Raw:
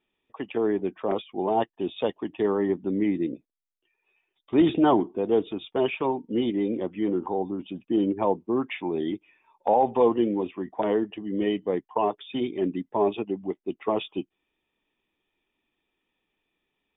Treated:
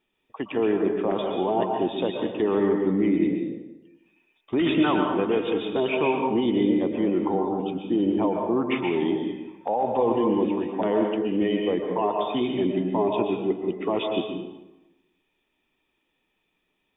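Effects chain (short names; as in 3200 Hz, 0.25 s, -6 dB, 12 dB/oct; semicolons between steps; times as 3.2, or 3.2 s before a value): 4.59–5.54 band shelf 1900 Hz +10.5 dB; limiter -18 dBFS, peak gain reduction 10.5 dB; reverb RT60 1.0 s, pre-delay 0.108 s, DRR 1.5 dB; gain +2.5 dB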